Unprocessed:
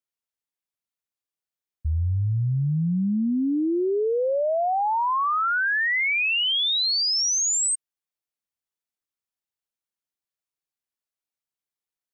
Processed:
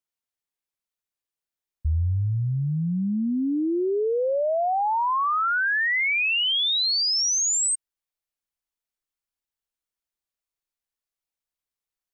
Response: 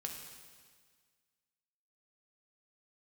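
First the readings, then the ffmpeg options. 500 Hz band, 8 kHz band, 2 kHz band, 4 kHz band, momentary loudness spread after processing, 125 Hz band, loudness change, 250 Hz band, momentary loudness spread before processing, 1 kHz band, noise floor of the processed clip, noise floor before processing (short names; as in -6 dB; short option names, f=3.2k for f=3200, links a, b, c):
-0.5 dB, 0.0 dB, 0.0 dB, 0.0 dB, 6 LU, -1.0 dB, 0.0 dB, -1.5 dB, 5 LU, 0.0 dB, under -85 dBFS, under -85 dBFS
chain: -af "asubboost=boost=3.5:cutoff=67"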